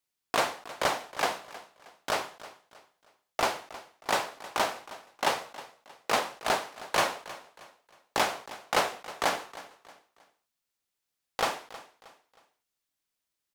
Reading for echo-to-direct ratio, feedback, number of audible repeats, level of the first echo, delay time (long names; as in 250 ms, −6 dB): −16.5 dB, 36%, 3, −17.0 dB, 315 ms